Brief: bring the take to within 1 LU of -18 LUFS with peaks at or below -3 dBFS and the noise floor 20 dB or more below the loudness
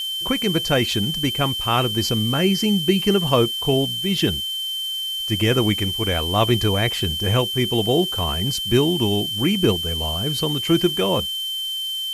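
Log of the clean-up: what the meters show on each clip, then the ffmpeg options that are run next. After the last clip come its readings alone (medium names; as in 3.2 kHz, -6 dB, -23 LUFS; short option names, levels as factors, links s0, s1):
steady tone 3.1 kHz; tone level -24 dBFS; noise floor -27 dBFS; noise floor target -40 dBFS; loudness -20.0 LUFS; peak level -4.0 dBFS; loudness target -18.0 LUFS
-> -af "bandreject=f=3100:w=30"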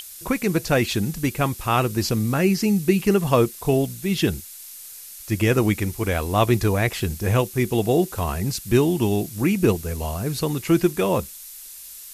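steady tone not found; noise floor -40 dBFS; noise floor target -42 dBFS
-> -af "afftdn=nr=6:nf=-40"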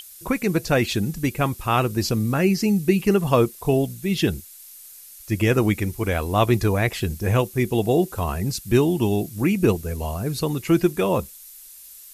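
noise floor -44 dBFS; loudness -22.0 LUFS; peak level -4.5 dBFS; loudness target -18.0 LUFS
-> -af "volume=1.58,alimiter=limit=0.708:level=0:latency=1"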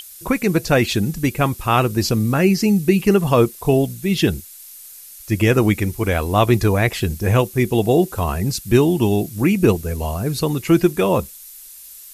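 loudness -18.0 LUFS; peak level -3.0 dBFS; noise floor -40 dBFS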